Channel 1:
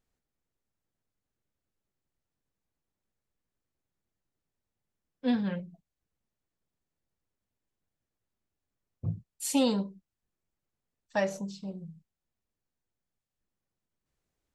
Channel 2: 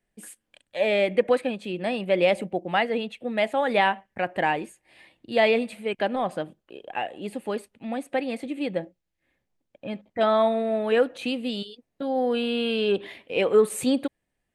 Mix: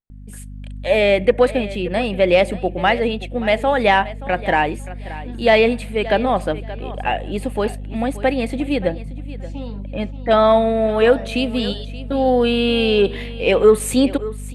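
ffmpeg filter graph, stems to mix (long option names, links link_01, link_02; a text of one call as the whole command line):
ffmpeg -i stem1.wav -i stem2.wav -filter_complex "[0:a]lowpass=3000,volume=-15dB,asplit=2[link_01][link_02];[link_02]volume=-10.5dB[link_03];[1:a]acontrast=32,aeval=exprs='val(0)+0.0251*(sin(2*PI*50*n/s)+sin(2*PI*2*50*n/s)/2+sin(2*PI*3*50*n/s)/3+sin(2*PI*4*50*n/s)/4+sin(2*PI*5*50*n/s)/5)':channel_layout=same,adelay=100,volume=-4.5dB,asplit=2[link_04][link_05];[link_05]volume=-16.5dB[link_06];[link_03][link_06]amix=inputs=2:normalize=0,aecho=0:1:577|1154|1731:1|0.18|0.0324[link_07];[link_01][link_04][link_07]amix=inputs=3:normalize=0,dynaudnorm=framelen=150:gausssize=7:maxgain=8dB" out.wav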